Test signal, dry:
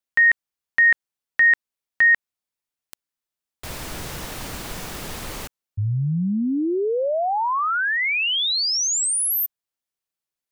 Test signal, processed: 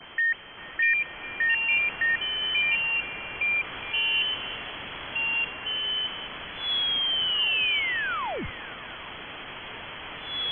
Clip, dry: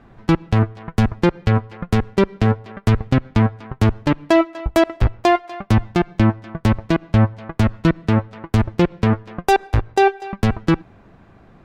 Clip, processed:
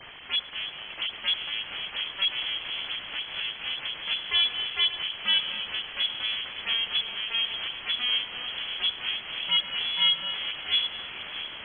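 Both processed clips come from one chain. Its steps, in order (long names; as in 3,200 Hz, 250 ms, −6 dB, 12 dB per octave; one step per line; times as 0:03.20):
spike at every zero crossing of −12 dBFS
in parallel at 0 dB: brickwall limiter −17.5 dBFS
on the sum: soft clipping −9.5 dBFS
all-pass dispersion lows, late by 51 ms, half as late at 830 Hz
delay with pitch and tempo change per echo 566 ms, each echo −6 semitones, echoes 3
high-frequency loss of the air 390 metres
on a send: echo through a band-pass that steps 204 ms, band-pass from 650 Hz, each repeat 0.7 octaves, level −10.5 dB
on the sum: steady tone 580 Hz −43 dBFS
linear-phase brick-wall high-pass 300 Hz
voice inversion scrambler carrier 3,700 Hz
level −6.5 dB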